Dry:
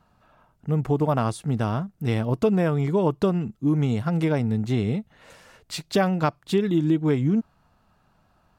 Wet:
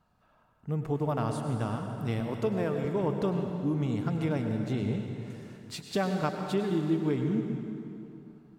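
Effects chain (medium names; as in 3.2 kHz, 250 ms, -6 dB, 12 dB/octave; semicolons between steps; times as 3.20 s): 2.20–2.85 s: high-pass 190 Hz; reverberation RT60 2.8 s, pre-delay 88 ms, DRR 4 dB; trim -8 dB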